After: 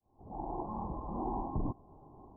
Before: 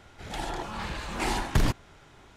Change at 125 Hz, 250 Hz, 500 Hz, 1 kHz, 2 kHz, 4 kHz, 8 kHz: -10.0 dB, -4.5 dB, -6.0 dB, -5.0 dB, under -40 dB, under -40 dB, under -40 dB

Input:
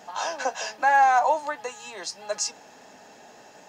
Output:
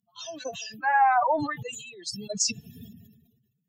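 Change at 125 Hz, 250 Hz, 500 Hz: n/a, +10.0 dB, -3.0 dB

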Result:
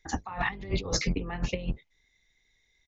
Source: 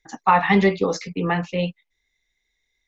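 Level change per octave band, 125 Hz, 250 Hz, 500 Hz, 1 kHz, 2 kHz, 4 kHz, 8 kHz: -7.0 dB, -12.5 dB, -14.0 dB, -17.0 dB, -10.0 dB, -3.0 dB, n/a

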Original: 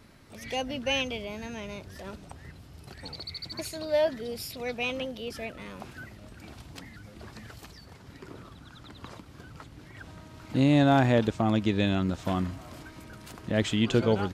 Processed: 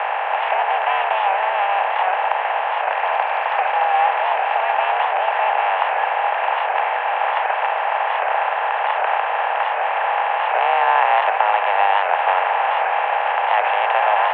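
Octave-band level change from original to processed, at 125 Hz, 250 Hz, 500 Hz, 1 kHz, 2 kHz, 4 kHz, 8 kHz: under -40 dB, under -30 dB, +8.0 dB, +23.0 dB, +17.0 dB, +5.5 dB, under -35 dB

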